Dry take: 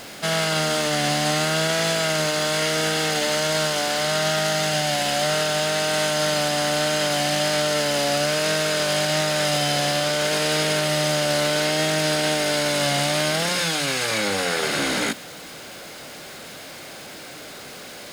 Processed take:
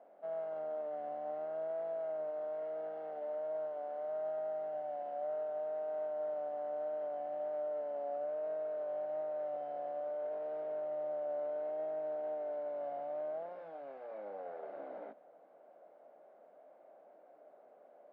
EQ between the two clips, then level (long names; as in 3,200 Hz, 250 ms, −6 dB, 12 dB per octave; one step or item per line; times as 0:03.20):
high-pass filter 180 Hz 24 dB per octave
transistor ladder low-pass 710 Hz, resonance 65%
first difference
+8.5 dB